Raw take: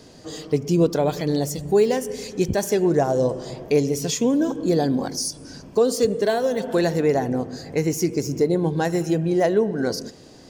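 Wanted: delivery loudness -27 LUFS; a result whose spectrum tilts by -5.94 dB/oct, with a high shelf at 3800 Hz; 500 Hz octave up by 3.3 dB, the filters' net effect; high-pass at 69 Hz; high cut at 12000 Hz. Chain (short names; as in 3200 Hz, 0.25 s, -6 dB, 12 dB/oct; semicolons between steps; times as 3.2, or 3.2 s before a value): HPF 69 Hz; LPF 12000 Hz; bell 500 Hz +4 dB; high shelf 3800 Hz -4 dB; gain -7 dB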